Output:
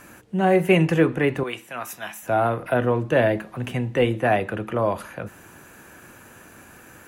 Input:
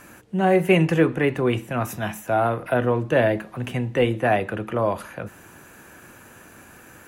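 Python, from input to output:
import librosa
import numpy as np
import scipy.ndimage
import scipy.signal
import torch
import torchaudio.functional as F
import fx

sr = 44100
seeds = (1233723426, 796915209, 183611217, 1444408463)

y = fx.highpass(x, sr, hz=1300.0, slope=6, at=(1.43, 2.23))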